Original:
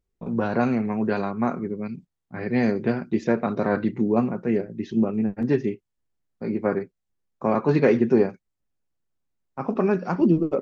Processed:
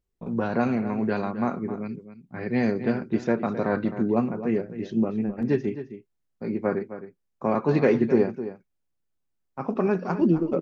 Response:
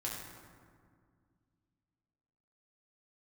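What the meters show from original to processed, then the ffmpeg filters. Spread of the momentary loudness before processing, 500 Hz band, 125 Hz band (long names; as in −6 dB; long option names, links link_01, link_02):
13 LU, −2.0 dB, −2.0 dB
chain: -filter_complex "[0:a]asplit=2[link_01][link_02];[link_02]adelay=262.4,volume=-12dB,highshelf=frequency=4000:gain=-5.9[link_03];[link_01][link_03]amix=inputs=2:normalize=0,volume=-2dB"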